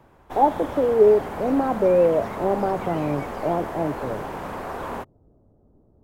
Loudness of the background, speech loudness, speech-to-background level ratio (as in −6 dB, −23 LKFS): −32.5 LKFS, −22.0 LKFS, 10.5 dB